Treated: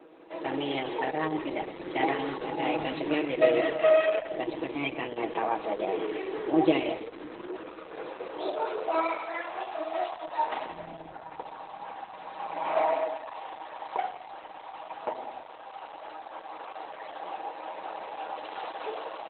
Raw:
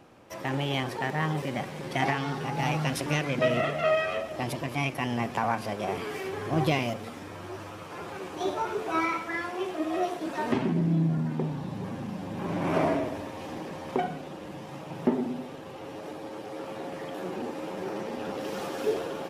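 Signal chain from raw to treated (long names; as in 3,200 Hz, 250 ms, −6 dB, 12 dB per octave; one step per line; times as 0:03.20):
high-pass filter 89 Hz 6 dB per octave
mains-hum notches 50/100/150/200 Hz
dynamic equaliser 1,400 Hz, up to −4 dB, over −46 dBFS, Q 2
comb filter 6.3 ms, depth 68%
0:11.70–0:12.43: upward compression, threshold −47 dBFS
high-pass filter sweep 350 Hz → 810 Hz, 0:07.33–0:09.95
reverb whose tail is shaped and stops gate 230 ms rising, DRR 11.5 dB
level −1.5 dB
Opus 8 kbit/s 48,000 Hz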